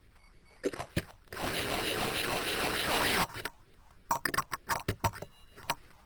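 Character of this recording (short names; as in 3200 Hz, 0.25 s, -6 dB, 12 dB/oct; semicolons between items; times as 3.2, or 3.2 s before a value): phasing stages 4, 3.3 Hz, lowest notch 370–1000 Hz; aliases and images of a low sample rate 6800 Hz, jitter 0%; Opus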